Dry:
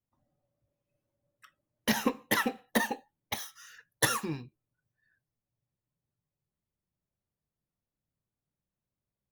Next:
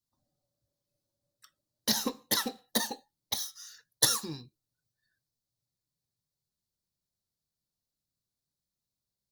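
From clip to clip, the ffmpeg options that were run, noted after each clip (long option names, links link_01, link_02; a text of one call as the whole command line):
ffmpeg -i in.wav -af "highshelf=frequency=3300:width_type=q:width=3:gain=8.5,volume=-4.5dB" out.wav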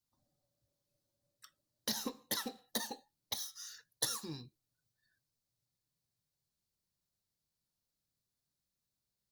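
ffmpeg -i in.wav -af "acompressor=threshold=-41dB:ratio=2" out.wav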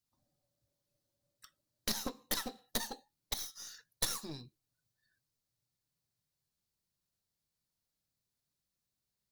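ffmpeg -i in.wav -af "aeval=exprs='0.168*(cos(1*acos(clip(val(0)/0.168,-1,1)))-cos(1*PI/2))+0.0266*(cos(8*acos(clip(val(0)/0.168,-1,1)))-cos(8*PI/2))':channel_layout=same" out.wav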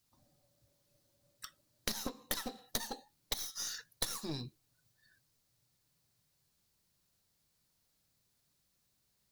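ffmpeg -i in.wav -af "acompressor=threshold=-44dB:ratio=6,volume=10dB" out.wav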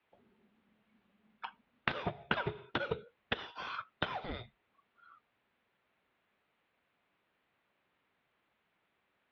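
ffmpeg -i in.wav -af "highpass=frequency=300:width_type=q:width=0.5412,highpass=frequency=300:width_type=q:width=1.307,lowpass=frequency=3000:width_type=q:width=0.5176,lowpass=frequency=3000:width_type=q:width=0.7071,lowpass=frequency=3000:width_type=q:width=1.932,afreqshift=-360,highpass=frequency=220:poles=1,volume=11dB" out.wav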